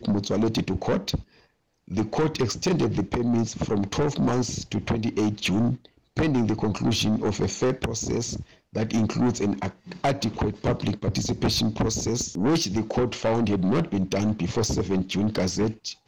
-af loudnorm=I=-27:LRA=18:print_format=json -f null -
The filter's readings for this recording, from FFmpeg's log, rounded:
"input_i" : "-25.6",
"input_tp" : "-17.6",
"input_lra" : "1.8",
"input_thresh" : "-35.7",